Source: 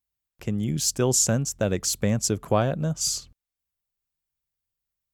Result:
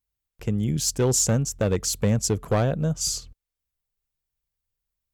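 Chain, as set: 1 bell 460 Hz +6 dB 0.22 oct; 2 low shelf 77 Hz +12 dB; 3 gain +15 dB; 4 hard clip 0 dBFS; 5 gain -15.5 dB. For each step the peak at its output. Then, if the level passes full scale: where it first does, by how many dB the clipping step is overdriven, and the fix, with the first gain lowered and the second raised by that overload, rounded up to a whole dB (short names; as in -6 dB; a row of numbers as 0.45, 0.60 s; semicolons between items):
-7.0, -7.0, +8.0, 0.0, -15.5 dBFS; step 3, 8.0 dB; step 3 +7 dB, step 5 -7.5 dB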